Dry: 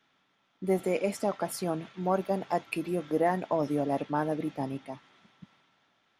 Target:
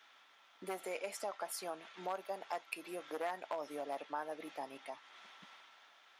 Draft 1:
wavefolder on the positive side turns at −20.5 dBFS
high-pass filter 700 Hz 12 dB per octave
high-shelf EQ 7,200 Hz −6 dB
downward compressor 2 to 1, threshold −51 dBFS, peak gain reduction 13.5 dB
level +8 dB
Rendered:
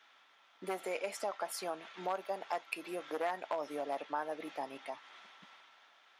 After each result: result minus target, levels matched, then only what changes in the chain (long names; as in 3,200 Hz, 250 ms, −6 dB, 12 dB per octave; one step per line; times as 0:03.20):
downward compressor: peak gain reduction −4 dB; 8,000 Hz band −3.0 dB
change: downward compressor 2 to 1, threshold −58.5 dBFS, peak gain reduction 17.5 dB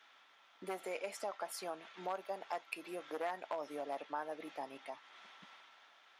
8,000 Hz band −3.0 dB
remove: high-shelf EQ 7,200 Hz −6 dB